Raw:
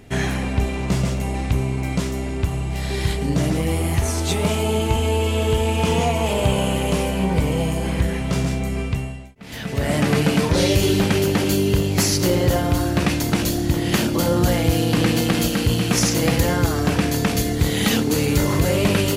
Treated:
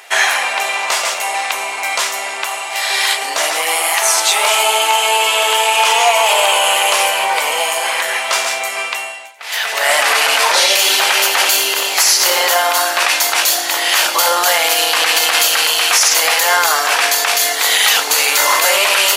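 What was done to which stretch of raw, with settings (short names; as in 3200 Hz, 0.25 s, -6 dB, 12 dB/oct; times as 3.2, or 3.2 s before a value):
9.16–12.55 echo 89 ms -10.5 dB
whole clip: HPF 770 Hz 24 dB/oct; maximiser +17 dB; gain -1 dB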